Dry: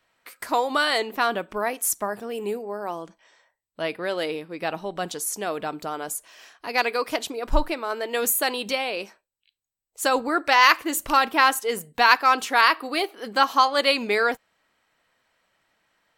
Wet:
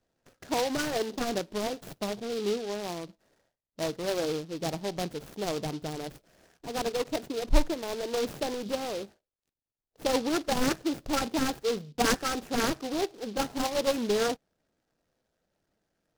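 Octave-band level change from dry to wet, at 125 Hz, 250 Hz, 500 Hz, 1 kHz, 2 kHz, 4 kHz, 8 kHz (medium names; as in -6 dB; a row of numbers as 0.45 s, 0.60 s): +4.0 dB, +1.0 dB, -3.0 dB, -12.5 dB, -14.0 dB, -8.0 dB, -7.0 dB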